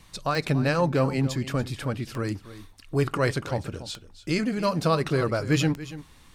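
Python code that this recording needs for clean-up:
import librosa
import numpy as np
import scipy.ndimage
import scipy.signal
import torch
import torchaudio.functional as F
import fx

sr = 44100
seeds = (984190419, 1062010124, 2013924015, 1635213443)

y = fx.fix_declick_ar(x, sr, threshold=10.0)
y = fx.fix_echo_inverse(y, sr, delay_ms=285, level_db=-15.0)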